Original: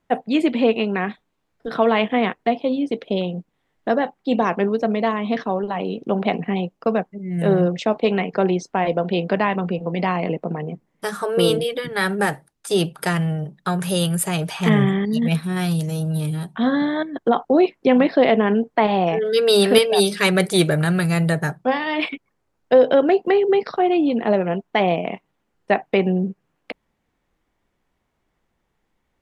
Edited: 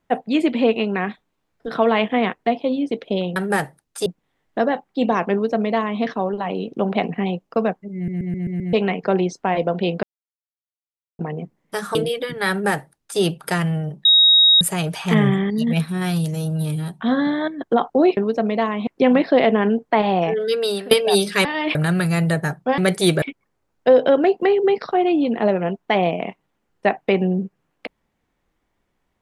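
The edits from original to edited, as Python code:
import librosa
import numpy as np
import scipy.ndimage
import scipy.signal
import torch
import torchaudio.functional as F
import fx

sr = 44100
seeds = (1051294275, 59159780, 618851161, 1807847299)

y = fx.edit(x, sr, fx.duplicate(start_s=4.62, length_s=0.7, to_s=17.72),
    fx.stutter_over(start_s=7.25, slice_s=0.13, count=6),
    fx.silence(start_s=9.33, length_s=1.16),
    fx.cut(start_s=11.25, length_s=0.25),
    fx.duplicate(start_s=12.05, length_s=0.7, to_s=3.36),
    fx.bleep(start_s=13.6, length_s=0.56, hz=3780.0, db=-9.0),
    fx.fade_out_to(start_s=19.21, length_s=0.55, floor_db=-22.5),
    fx.swap(start_s=20.3, length_s=0.44, other_s=21.77, other_length_s=0.3), tone=tone)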